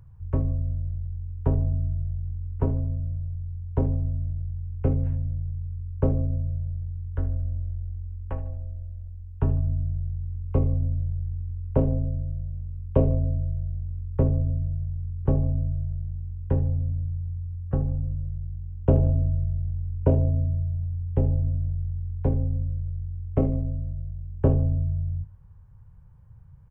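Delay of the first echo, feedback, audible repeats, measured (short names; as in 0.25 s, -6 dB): 75 ms, 44%, 3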